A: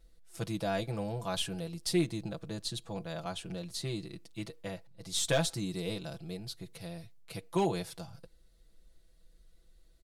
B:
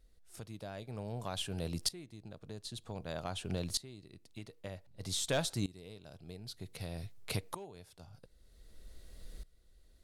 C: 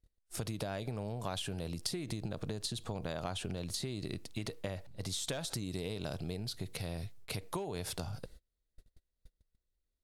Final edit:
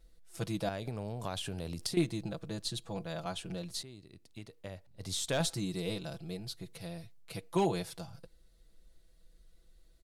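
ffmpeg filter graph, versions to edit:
-filter_complex "[0:a]asplit=3[s0][s1][s2];[s0]atrim=end=0.692[s3];[2:a]atrim=start=0.688:end=1.972[s4];[s1]atrim=start=1.968:end=3.832[s5];[1:a]atrim=start=3.828:end=5.402[s6];[s2]atrim=start=5.398[s7];[s3][s4]acrossfade=d=0.004:c1=hsin:c2=hsin[s8];[s8][s5]acrossfade=d=0.004:c1=hsin:c2=hsin[s9];[s9][s6]acrossfade=d=0.004:c1=hsin:c2=hsin[s10];[s10][s7]acrossfade=d=0.004:c1=hsin:c2=hsin"

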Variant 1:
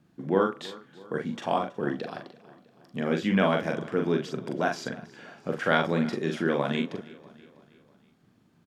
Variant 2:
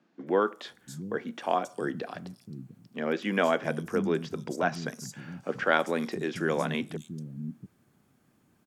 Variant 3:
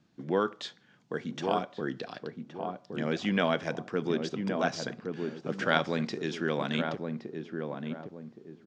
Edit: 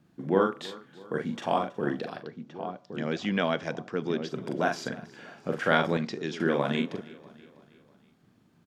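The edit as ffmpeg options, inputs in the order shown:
-filter_complex "[2:a]asplit=2[s0][s1];[0:a]asplit=3[s2][s3][s4];[s2]atrim=end=2.32[s5];[s0]atrim=start=2.08:end=4.45[s6];[s3]atrim=start=4.21:end=5.972[s7];[s1]atrim=start=5.968:end=6.402[s8];[s4]atrim=start=6.398[s9];[s5][s6]acrossfade=d=0.24:c1=tri:c2=tri[s10];[s10][s7]acrossfade=d=0.24:c1=tri:c2=tri[s11];[s11][s8]acrossfade=d=0.004:c1=hsin:c2=hsin[s12];[s12][s9]acrossfade=d=0.004:c1=hsin:c2=hsin"

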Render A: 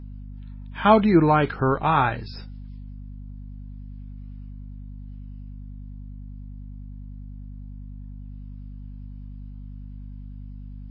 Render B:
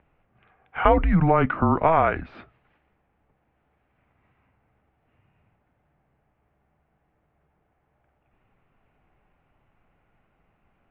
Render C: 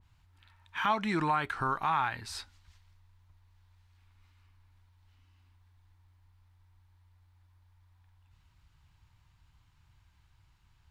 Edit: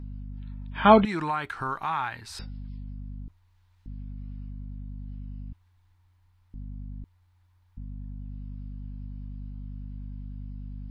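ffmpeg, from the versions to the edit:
-filter_complex "[2:a]asplit=4[s0][s1][s2][s3];[0:a]asplit=5[s4][s5][s6][s7][s8];[s4]atrim=end=1.052[s9];[s0]atrim=start=1.048:end=2.392[s10];[s5]atrim=start=2.388:end=3.282[s11];[s1]atrim=start=3.278:end=3.862[s12];[s6]atrim=start=3.858:end=5.532[s13];[s2]atrim=start=5.528:end=6.542[s14];[s7]atrim=start=6.538:end=7.042[s15];[s3]atrim=start=7.038:end=7.772[s16];[s8]atrim=start=7.768[s17];[s9][s10]acrossfade=d=0.004:c1=hsin:c2=hsin[s18];[s18][s11]acrossfade=d=0.004:c1=hsin:c2=hsin[s19];[s19][s12]acrossfade=d=0.004:c1=hsin:c2=hsin[s20];[s20][s13]acrossfade=d=0.004:c1=hsin:c2=hsin[s21];[s21][s14]acrossfade=d=0.004:c1=hsin:c2=hsin[s22];[s22][s15]acrossfade=d=0.004:c1=hsin:c2=hsin[s23];[s23][s16]acrossfade=d=0.004:c1=hsin:c2=hsin[s24];[s24][s17]acrossfade=d=0.004:c1=hsin:c2=hsin"

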